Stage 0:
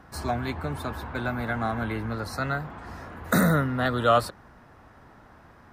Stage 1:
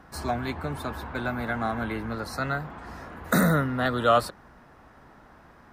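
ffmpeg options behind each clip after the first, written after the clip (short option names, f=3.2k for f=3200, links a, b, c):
-af "equalizer=f=100:t=o:w=0.38:g=-8.5"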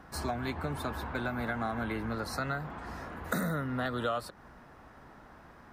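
-af "acompressor=threshold=-29dB:ratio=5,volume=-1dB"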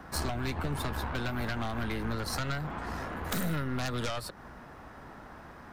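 -filter_complex "[0:a]aeval=exprs='0.15*(cos(1*acos(clip(val(0)/0.15,-1,1)))-cos(1*PI/2))+0.0473*(cos(4*acos(clip(val(0)/0.15,-1,1)))-cos(4*PI/2))':c=same,aeval=exprs='0.211*sin(PI/2*2.51*val(0)/0.211)':c=same,acrossover=split=160|3000[a][b][c];[b]acompressor=threshold=-27dB:ratio=6[d];[a][d][c]amix=inputs=3:normalize=0,volume=-6.5dB"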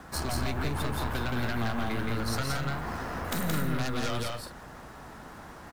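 -filter_complex "[0:a]acrusher=bits=8:mix=0:aa=0.5,asplit=2[a][b];[b]aecho=0:1:172|215.7:0.794|0.316[c];[a][c]amix=inputs=2:normalize=0"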